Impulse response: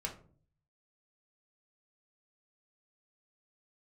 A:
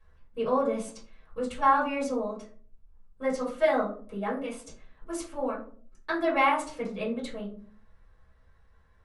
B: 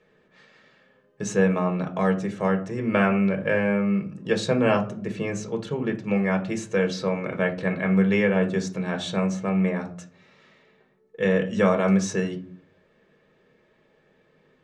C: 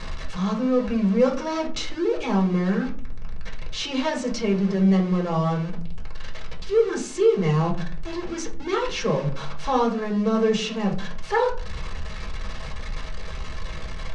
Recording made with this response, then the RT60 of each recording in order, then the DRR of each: C; 0.45 s, 0.45 s, 0.45 s; -8.5 dB, 3.5 dB, -0.5 dB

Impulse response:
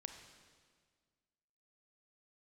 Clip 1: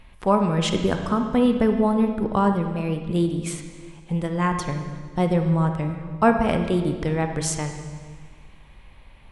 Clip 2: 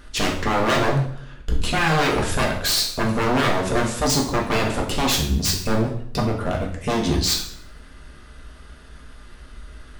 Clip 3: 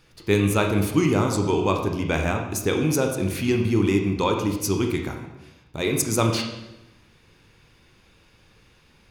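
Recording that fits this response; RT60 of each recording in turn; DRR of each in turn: 1; 1.7 s, 0.65 s, 1.0 s; 6.0 dB, -1.0 dB, 2.5 dB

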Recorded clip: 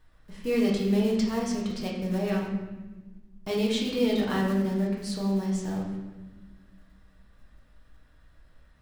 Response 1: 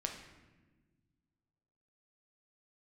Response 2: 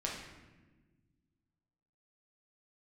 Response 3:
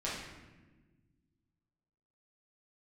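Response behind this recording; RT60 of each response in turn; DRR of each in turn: 2; 1.3 s, 1.3 s, 1.3 s; 2.0 dB, -3.5 dB, -8.0 dB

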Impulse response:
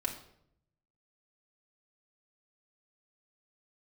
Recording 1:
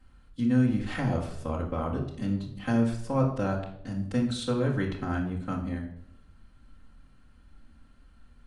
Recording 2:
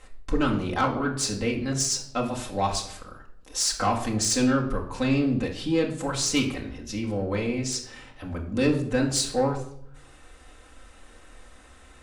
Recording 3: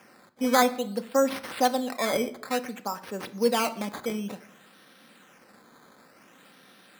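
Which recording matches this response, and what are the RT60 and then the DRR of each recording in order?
2; 0.70 s, 0.70 s, 0.75 s; -6.5 dB, -1.5 dB, 8.0 dB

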